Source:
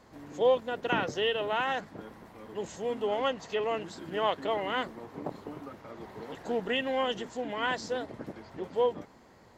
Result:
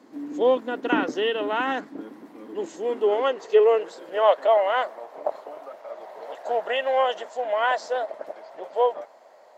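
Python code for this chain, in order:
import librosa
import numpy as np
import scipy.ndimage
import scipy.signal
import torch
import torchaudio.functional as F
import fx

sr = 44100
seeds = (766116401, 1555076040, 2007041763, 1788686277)

y = fx.filter_sweep_highpass(x, sr, from_hz=280.0, to_hz=620.0, start_s=2.45, end_s=4.53, q=5.6)
y = fx.dynamic_eq(y, sr, hz=1300.0, q=0.9, threshold_db=-38.0, ratio=4.0, max_db=5)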